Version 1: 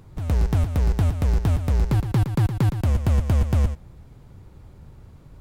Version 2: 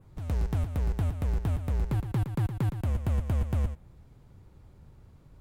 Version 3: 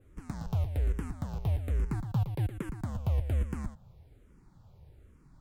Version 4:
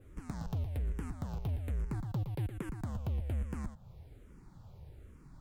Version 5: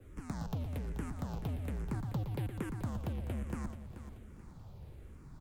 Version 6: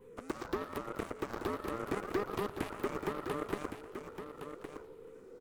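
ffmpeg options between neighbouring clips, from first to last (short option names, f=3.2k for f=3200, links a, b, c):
-af "adynamicequalizer=threshold=0.00126:dfrequency=5200:dqfactor=1.4:tfrequency=5200:tqfactor=1.4:attack=5:release=100:ratio=0.375:range=3:mode=cutabove:tftype=bell,volume=-8dB"
-filter_complex "[0:a]asplit=2[a][b];[b]afreqshift=-1.2[c];[a][c]amix=inputs=2:normalize=1"
-af "asoftclip=type=tanh:threshold=-25.5dB,acompressor=threshold=-48dB:ratio=1.5,volume=3.5dB"
-filter_complex "[0:a]acrossover=split=140|350|3600[a][b][c][d];[a]asoftclip=type=tanh:threshold=-40dB[e];[e][b][c][d]amix=inputs=4:normalize=0,aecho=1:1:433|866|1299|1732:0.266|0.104|0.0405|0.0158,volume=2dB"
-af "afftfilt=real='real(if(between(b,1,1008),(2*floor((b-1)/24)+1)*24-b,b),0)':imag='imag(if(between(b,1,1008),(2*floor((b-1)/24)+1)*24-b,b),0)*if(between(b,1,1008),-1,1)':win_size=2048:overlap=0.75,aeval=exprs='0.0596*(cos(1*acos(clip(val(0)/0.0596,-1,1)))-cos(1*PI/2))+0.015*(cos(7*acos(clip(val(0)/0.0596,-1,1)))-cos(7*PI/2))':c=same,aecho=1:1:1114:0.376,volume=1dB"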